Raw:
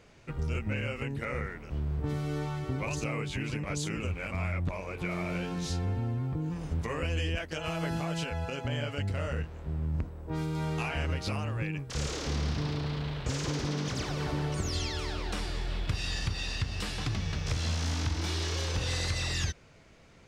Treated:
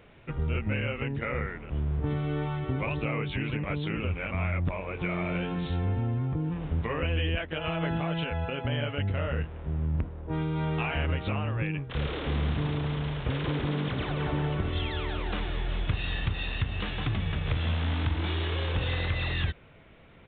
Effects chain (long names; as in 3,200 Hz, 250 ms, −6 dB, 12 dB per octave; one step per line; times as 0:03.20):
downsampling to 8,000 Hz
level +3 dB